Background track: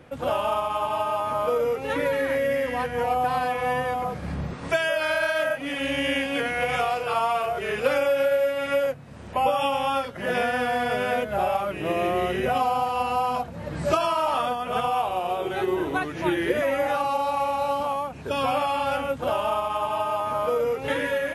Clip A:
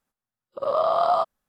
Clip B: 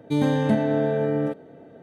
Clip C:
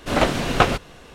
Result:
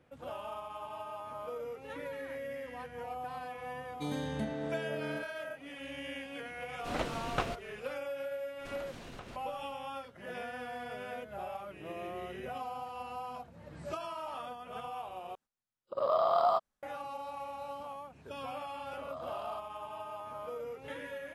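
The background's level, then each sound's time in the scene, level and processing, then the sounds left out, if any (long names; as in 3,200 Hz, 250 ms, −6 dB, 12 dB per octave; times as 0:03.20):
background track −17 dB
0:03.90: mix in B −16 dB + high-shelf EQ 2,200 Hz +11 dB
0:06.78: mix in C −16.5 dB
0:08.59: mix in C −16 dB + downward compressor, threshold −28 dBFS
0:15.35: overwrite with A −6.5 dB + linearly interpolated sample-rate reduction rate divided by 2×
0:18.36: mix in A −16 dB + downward compressor 2 to 1, threshold −28 dBFS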